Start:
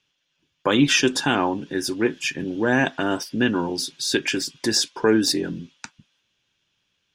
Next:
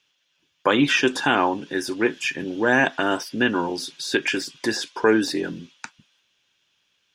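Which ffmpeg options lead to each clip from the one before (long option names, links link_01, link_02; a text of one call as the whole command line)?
ffmpeg -i in.wav -filter_complex "[0:a]acrossover=split=2700[link_01][link_02];[link_02]acompressor=threshold=-34dB:ratio=4:attack=1:release=60[link_03];[link_01][link_03]amix=inputs=2:normalize=0,lowshelf=frequency=280:gain=-11,volume=4dB" out.wav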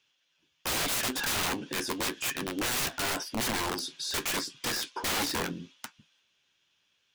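ffmpeg -i in.wav -af "aeval=exprs='(mod(10.6*val(0)+1,2)-1)/10.6':channel_layout=same,flanger=delay=7.5:depth=6.6:regen=-54:speed=0.85:shape=triangular" out.wav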